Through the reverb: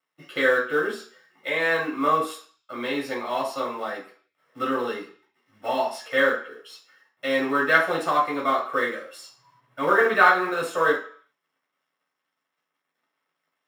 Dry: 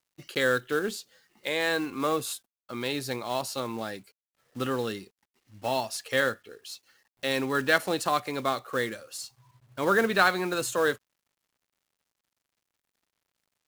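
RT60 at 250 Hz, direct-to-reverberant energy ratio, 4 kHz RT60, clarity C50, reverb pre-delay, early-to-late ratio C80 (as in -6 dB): 0.40 s, -5.0 dB, 0.55 s, 7.0 dB, 3 ms, 12.0 dB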